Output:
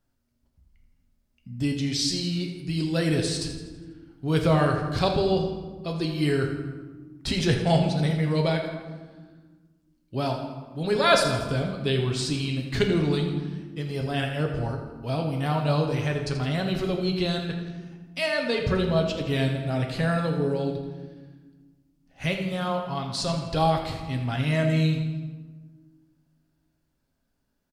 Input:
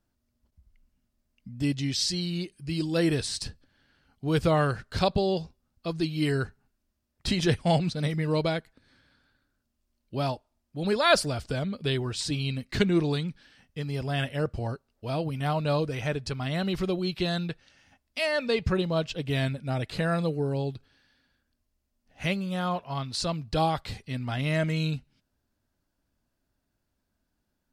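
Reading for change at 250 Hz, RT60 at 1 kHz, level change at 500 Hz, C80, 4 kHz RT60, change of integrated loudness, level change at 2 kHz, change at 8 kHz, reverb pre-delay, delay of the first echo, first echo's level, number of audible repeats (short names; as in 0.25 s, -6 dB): +3.0 dB, 1.3 s, +2.5 dB, 6.0 dB, 0.85 s, +2.5 dB, +2.0 dB, +1.5 dB, 7 ms, 82 ms, -11.5 dB, 1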